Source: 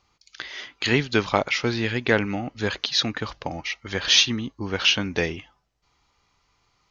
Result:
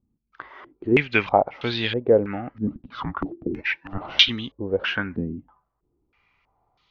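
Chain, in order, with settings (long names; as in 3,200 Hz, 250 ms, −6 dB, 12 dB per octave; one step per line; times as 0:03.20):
0:02.67–0:04.29: frequency shifter −390 Hz
low-pass on a step sequencer 3.1 Hz 240–3,500 Hz
level −3 dB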